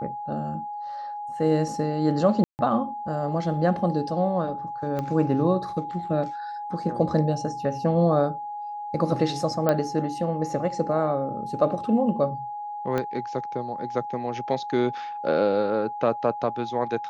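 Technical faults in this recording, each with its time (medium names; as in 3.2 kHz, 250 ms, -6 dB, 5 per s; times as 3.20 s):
whine 830 Hz -31 dBFS
2.44–2.59 s: dropout 149 ms
4.99 s: pop -17 dBFS
9.69 s: pop -10 dBFS
12.98 s: pop -14 dBFS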